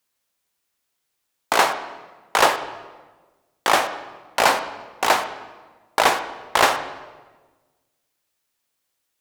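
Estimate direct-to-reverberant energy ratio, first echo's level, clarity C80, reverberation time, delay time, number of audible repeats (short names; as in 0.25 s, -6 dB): 8.5 dB, none, 12.5 dB, 1.3 s, none, none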